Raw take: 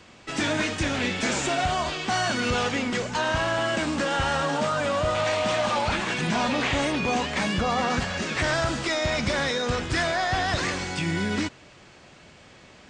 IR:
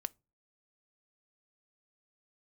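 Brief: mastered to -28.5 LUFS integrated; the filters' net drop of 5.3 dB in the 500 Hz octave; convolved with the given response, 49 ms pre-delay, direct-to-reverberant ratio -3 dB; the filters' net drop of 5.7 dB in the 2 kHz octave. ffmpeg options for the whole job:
-filter_complex "[0:a]equalizer=f=500:t=o:g=-6.5,equalizer=f=2000:t=o:g=-7,asplit=2[s0][s1];[1:a]atrim=start_sample=2205,adelay=49[s2];[s1][s2]afir=irnorm=-1:irlink=0,volume=1.68[s3];[s0][s3]amix=inputs=2:normalize=0,volume=0.562"

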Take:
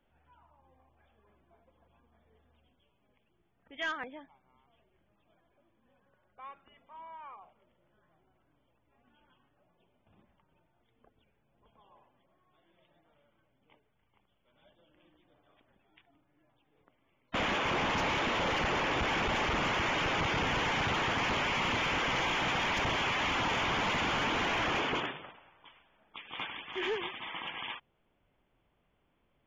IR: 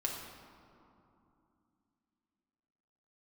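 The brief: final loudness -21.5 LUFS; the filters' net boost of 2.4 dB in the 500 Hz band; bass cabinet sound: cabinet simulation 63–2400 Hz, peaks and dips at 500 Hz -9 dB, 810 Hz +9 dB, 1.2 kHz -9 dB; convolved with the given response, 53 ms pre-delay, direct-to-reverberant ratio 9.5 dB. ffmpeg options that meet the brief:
-filter_complex "[0:a]equalizer=f=500:t=o:g=6.5,asplit=2[s0][s1];[1:a]atrim=start_sample=2205,adelay=53[s2];[s1][s2]afir=irnorm=-1:irlink=0,volume=0.237[s3];[s0][s3]amix=inputs=2:normalize=0,highpass=f=63:w=0.5412,highpass=f=63:w=1.3066,equalizer=f=500:t=q:w=4:g=-9,equalizer=f=810:t=q:w=4:g=9,equalizer=f=1200:t=q:w=4:g=-9,lowpass=f=2400:w=0.5412,lowpass=f=2400:w=1.3066,volume=2.66"

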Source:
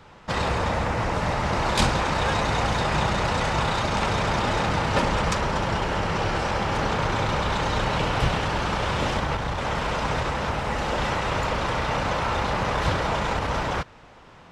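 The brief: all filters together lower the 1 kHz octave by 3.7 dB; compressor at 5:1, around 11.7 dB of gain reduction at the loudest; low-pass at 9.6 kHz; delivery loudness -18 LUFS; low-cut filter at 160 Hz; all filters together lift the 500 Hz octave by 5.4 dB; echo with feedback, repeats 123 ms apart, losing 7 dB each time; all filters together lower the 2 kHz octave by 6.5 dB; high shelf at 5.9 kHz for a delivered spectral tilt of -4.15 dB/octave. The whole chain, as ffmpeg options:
-af "highpass=160,lowpass=9600,equalizer=f=500:t=o:g=8.5,equalizer=f=1000:t=o:g=-6,equalizer=f=2000:t=o:g=-6.5,highshelf=f=5900:g=-4.5,acompressor=threshold=0.0282:ratio=5,aecho=1:1:123|246|369|492|615:0.447|0.201|0.0905|0.0407|0.0183,volume=5.62"

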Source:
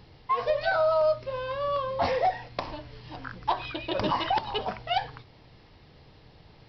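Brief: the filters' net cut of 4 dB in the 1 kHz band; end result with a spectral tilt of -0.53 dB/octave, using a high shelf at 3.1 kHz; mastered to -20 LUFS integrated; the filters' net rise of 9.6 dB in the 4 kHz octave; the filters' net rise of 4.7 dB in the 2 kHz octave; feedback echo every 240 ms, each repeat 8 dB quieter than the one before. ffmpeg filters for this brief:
-af "equalizer=f=1000:t=o:g=-7.5,equalizer=f=2000:t=o:g=6,highshelf=f=3100:g=3.5,equalizer=f=4000:t=o:g=8.5,aecho=1:1:240|480|720|960|1200:0.398|0.159|0.0637|0.0255|0.0102,volume=2.24"

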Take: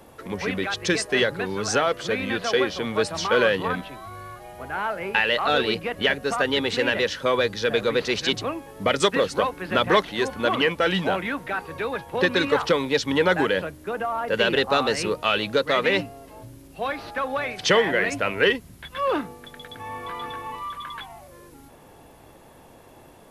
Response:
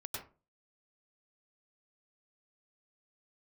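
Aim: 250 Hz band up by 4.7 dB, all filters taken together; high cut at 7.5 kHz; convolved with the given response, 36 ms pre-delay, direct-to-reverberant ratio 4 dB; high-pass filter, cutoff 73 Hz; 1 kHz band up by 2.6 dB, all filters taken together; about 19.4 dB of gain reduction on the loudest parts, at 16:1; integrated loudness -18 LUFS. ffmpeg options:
-filter_complex "[0:a]highpass=73,lowpass=7500,equalizer=f=250:t=o:g=6,equalizer=f=1000:t=o:g=3,acompressor=threshold=0.0251:ratio=16,asplit=2[s0][s1];[1:a]atrim=start_sample=2205,adelay=36[s2];[s1][s2]afir=irnorm=-1:irlink=0,volume=0.668[s3];[s0][s3]amix=inputs=2:normalize=0,volume=7.08"

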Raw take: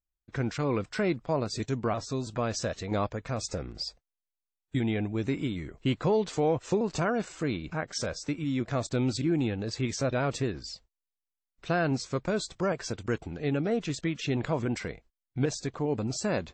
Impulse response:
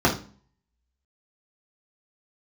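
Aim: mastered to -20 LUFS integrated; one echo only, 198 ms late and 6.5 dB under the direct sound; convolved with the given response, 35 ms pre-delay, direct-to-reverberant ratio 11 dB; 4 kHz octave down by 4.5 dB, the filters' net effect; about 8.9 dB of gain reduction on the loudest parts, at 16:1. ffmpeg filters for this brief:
-filter_complex "[0:a]equalizer=f=4000:t=o:g=-6,acompressor=threshold=0.0282:ratio=16,aecho=1:1:198:0.473,asplit=2[s0][s1];[1:a]atrim=start_sample=2205,adelay=35[s2];[s1][s2]afir=irnorm=-1:irlink=0,volume=0.0355[s3];[s0][s3]amix=inputs=2:normalize=0,volume=5.96"

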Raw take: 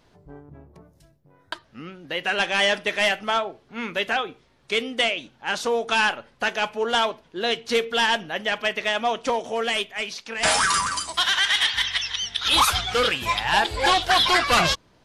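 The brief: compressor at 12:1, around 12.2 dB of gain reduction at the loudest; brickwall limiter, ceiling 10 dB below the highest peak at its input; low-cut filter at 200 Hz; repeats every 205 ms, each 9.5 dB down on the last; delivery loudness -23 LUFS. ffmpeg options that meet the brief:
-af "highpass=200,acompressor=threshold=0.0447:ratio=12,alimiter=limit=0.0631:level=0:latency=1,aecho=1:1:205|410|615|820:0.335|0.111|0.0365|0.012,volume=2.99"

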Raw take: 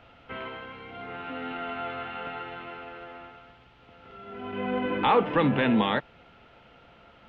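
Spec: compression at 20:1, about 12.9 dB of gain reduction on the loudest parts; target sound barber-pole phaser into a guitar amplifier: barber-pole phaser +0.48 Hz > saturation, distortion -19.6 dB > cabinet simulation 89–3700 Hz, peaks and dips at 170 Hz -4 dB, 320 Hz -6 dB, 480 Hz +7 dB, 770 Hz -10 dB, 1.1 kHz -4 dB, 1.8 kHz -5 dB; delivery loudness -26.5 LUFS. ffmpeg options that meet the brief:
-filter_complex "[0:a]acompressor=threshold=0.0355:ratio=20,asplit=2[s0][s1];[s1]afreqshift=0.48[s2];[s0][s2]amix=inputs=2:normalize=1,asoftclip=threshold=0.0398,highpass=89,equalizer=f=170:t=q:w=4:g=-4,equalizer=f=320:t=q:w=4:g=-6,equalizer=f=480:t=q:w=4:g=7,equalizer=f=770:t=q:w=4:g=-10,equalizer=f=1100:t=q:w=4:g=-4,equalizer=f=1800:t=q:w=4:g=-5,lowpass=f=3700:w=0.5412,lowpass=f=3700:w=1.3066,volume=5.31"

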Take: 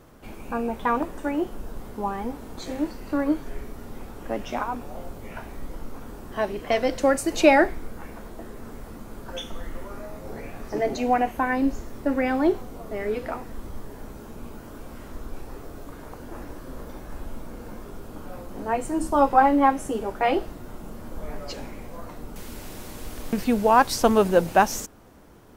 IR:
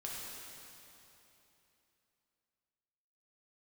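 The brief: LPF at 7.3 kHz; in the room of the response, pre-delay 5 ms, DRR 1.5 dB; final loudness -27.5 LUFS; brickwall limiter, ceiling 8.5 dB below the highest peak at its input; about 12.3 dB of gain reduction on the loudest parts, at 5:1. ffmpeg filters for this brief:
-filter_complex "[0:a]lowpass=7300,acompressor=threshold=0.0562:ratio=5,alimiter=limit=0.0841:level=0:latency=1,asplit=2[s0][s1];[1:a]atrim=start_sample=2205,adelay=5[s2];[s1][s2]afir=irnorm=-1:irlink=0,volume=0.794[s3];[s0][s3]amix=inputs=2:normalize=0,volume=1.88"

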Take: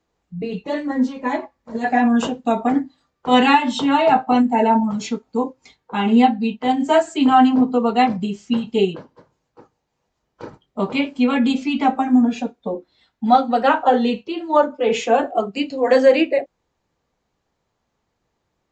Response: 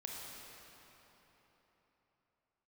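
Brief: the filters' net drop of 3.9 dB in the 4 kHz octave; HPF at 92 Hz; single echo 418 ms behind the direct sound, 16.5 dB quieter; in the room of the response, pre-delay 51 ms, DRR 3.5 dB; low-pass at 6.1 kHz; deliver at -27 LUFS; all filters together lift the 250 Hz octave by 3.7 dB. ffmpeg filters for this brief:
-filter_complex "[0:a]highpass=92,lowpass=6100,equalizer=f=250:t=o:g=4,equalizer=f=4000:t=o:g=-5.5,aecho=1:1:418:0.15,asplit=2[s0][s1];[1:a]atrim=start_sample=2205,adelay=51[s2];[s1][s2]afir=irnorm=-1:irlink=0,volume=0.75[s3];[s0][s3]amix=inputs=2:normalize=0,volume=0.237"

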